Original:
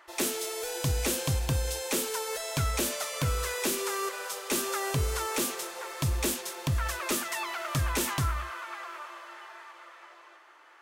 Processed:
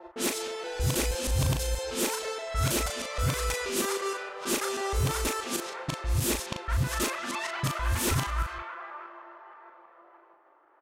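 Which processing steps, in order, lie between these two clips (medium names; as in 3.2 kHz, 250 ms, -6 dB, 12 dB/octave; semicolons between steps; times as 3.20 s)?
time reversed locally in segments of 159 ms; level-controlled noise filter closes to 680 Hz, open at -26 dBFS; doubling 38 ms -5 dB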